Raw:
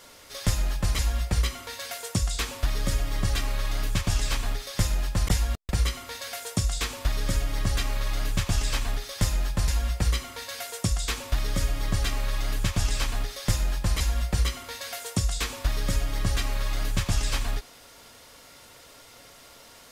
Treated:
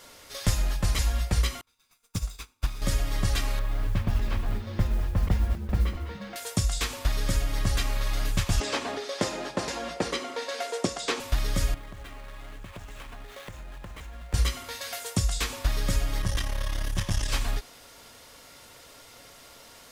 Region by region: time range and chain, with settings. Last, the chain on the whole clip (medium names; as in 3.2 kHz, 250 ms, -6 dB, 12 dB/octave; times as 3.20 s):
1.61–2.82 s: comb filter that takes the minimum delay 0.81 ms + upward expansion 2.5:1, over -42 dBFS
3.59–6.36 s: tape spacing loss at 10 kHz 33 dB + modulation noise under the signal 30 dB + frequency-shifting echo 201 ms, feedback 41%, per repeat -130 Hz, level -11 dB
8.60–11.20 s: band-pass 280–6800 Hz + peaking EQ 380 Hz +11.5 dB 2.4 oct
11.74–14.34 s: median filter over 9 samples + bass shelf 150 Hz -7.5 dB + compression 12:1, threshold -37 dBFS
16.22–17.30 s: rippled EQ curve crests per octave 1.2, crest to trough 6 dB + valve stage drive 17 dB, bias 0.65
whole clip: none